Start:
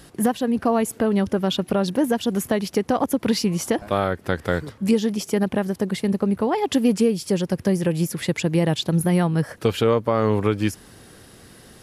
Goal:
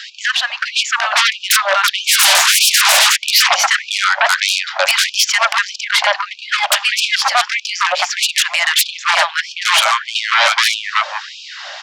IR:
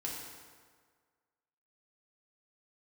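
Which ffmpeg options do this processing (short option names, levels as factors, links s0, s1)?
-filter_complex "[0:a]asplit=2[s0][s1];[1:a]atrim=start_sample=2205[s2];[s1][s2]afir=irnorm=-1:irlink=0,volume=0.075[s3];[s0][s3]amix=inputs=2:normalize=0,asubboost=boost=5.5:cutoff=130,aresample=16000,aresample=44100,asettb=1/sr,asplit=3[s4][s5][s6];[s4]atrim=end=4.804[s7];[s5]atrim=start=4.8:end=5.81,asetpts=PTS-STARTPTS,afade=t=in:d=0.004:c=qsin,afade=t=out:st=1.006:d=0.004:c=qsin,highshelf=f=4900:g=7.5[s8];[s6]atrim=start=5.806[s9];[s7][s8]acrossfade=d=0.004:c1=hsin:c2=qsin[s10];[s10][s9]acrossfade=d=0.004:c1=qsin:c2=hsin,acrossover=split=230|1300[s11][s12][s13];[s11]adelay=150[s14];[s12]adelay=500[s15];[s14][s15][s13]amix=inputs=3:normalize=0,asplit=3[s16][s17][s18];[s16]afade=t=out:st=2.06:d=0.02[s19];[s17]asplit=2[s20][s21];[s21]highpass=f=720:p=1,volume=79.4,asoftclip=type=tanh:threshold=0.266[s22];[s20][s22]amix=inputs=2:normalize=0,lowpass=f=3100:p=1,volume=0.501,afade=t=in:st=2.06:d=0.02,afade=t=out:st=3.15:d=0.02[s23];[s18]afade=t=in:st=3.15:d=0.02[s24];[s19][s23][s24]amix=inputs=3:normalize=0,acrossover=split=290|5300[s25][s26][s27];[s26]aeval=exprs='0.335*sin(PI/2*7.94*val(0)/0.335)':c=same[s28];[s25][s28][s27]amix=inputs=3:normalize=0,afftfilt=real='re*gte(b*sr/1024,530*pow(2400/530,0.5+0.5*sin(2*PI*1.6*pts/sr)))':imag='im*gte(b*sr/1024,530*pow(2400/530,0.5+0.5*sin(2*PI*1.6*pts/sr)))':win_size=1024:overlap=0.75,volume=1.41"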